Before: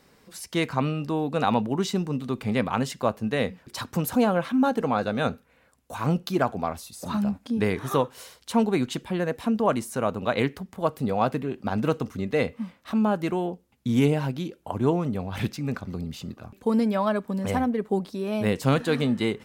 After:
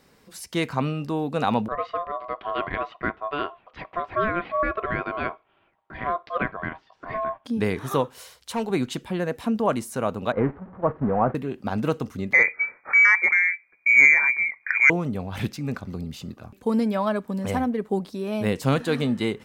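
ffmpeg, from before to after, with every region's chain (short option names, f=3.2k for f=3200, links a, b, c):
-filter_complex "[0:a]asettb=1/sr,asplit=3[a][b][c];[a]atrim=end=1.684[d];[b]atrim=start=1.68:end=7.45,asetpts=PTS-STARTPTS,afade=t=in:d=0.004:c=qsin,afade=t=out:st=5.766:d=0.004:c=qsin,lowpass=f=2.5k:w=0.5412,lowpass=f=2.5k:w=1.3066,aeval=exprs='val(0)*sin(2*PI*870*n/s)':c=same[e];[c]atrim=start=7.446[f];[d][e]acrossfade=d=0.004:c1=hsin:c2=qsin[g];[g][f]acrossfade=d=0.004:c1=qsin:c2=hsin,asettb=1/sr,asplit=3[h][i][j];[h]atrim=end=8.184[k];[i]atrim=start=8.18:end=8.7,asetpts=PTS-STARTPTS,afade=t=in:d=0.004:c=qsin,afade=t=out:st=0.516:d=0.004:c=qsin,equalizer=f=240:w=1.1:g=-8,asoftclip=type=hard:threshold=-21.5dB[l];[j]atrim=start=8.696[m];[k][l]acrossfade=d=0.004:c1=hsin:c2=qsin[n];[n][m]acrossfade=d=0.004:c1=qsin:c2=hsin,asettb=1/sr,asplit=3[o][p][q];[o]atrim=end=10.324[r];[p]atrim=start=10.32:end=11.35,asetpts=PTS-STARTPTS,afade=t=in:d=0.004:c=qsin,afade=t=out:st=1.026:d=0.004:c=qsin,aeval=exprs='val(0)+0.5*0.0501*sgn(val(0))':c=same,agate=range=-13dB:threshold=-27dB:ratio=16:release=100:detection=peak,lowpass=f=1.5k:w=0.5412,lowpass=f=1.5k:w=1.3066[s];[q]atrim=start=11.346[t];[r][s]acrossfade=d=0.004:c1=hsin:c2=qsin[u];[u][t]acrossfade=d=0.004:c1=qsin:c2=hsin,asettb=1/sr,asplit=3[v][w][x];[v]atrim=end=12.334[y];[w]atrim=start=12.33:end=14.9,asetpts=PTS-STARTPTS,afade=t=in:d=0.004:c=qsin,afade=t=out:st=2.566:d=0.004:c=qsin,lowpass=f=2.1k:t=q:w=0.5098,lowpass=f=2.1k:t=q:w=0.6013,lowpass=f=2.1k:t=q:w=0.9,lowpass=f=2.1k:t=q:w=2.563,afreqshift=-2500,acontrast=68[z];[x]atrim=start=14.896[aa];[y][z]acrossfade=d=0.004:c1=hsin:c2=qsin[ab];[ab][aa]acrossfade=d=0.004:c1=qsin:c2=hsin"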